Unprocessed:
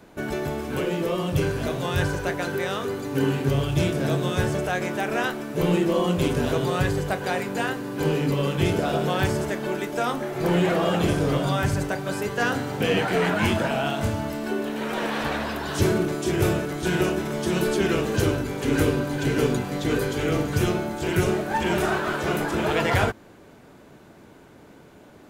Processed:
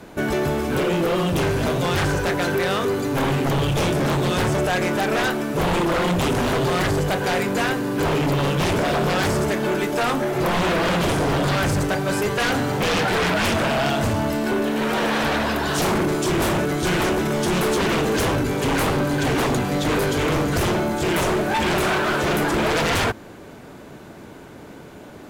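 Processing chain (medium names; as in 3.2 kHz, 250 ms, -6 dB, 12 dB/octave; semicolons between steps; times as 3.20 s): sine folder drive 13 dB, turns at -8.5 dBFS; trim -8.5 dB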